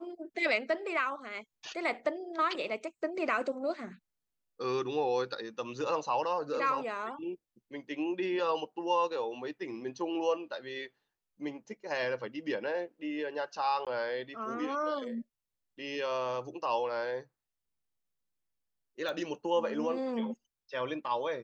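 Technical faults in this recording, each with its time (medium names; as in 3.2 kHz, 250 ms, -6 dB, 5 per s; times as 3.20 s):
13.85–13.87 s: dropout 17 ms
19.09 s: pop -25 dBFS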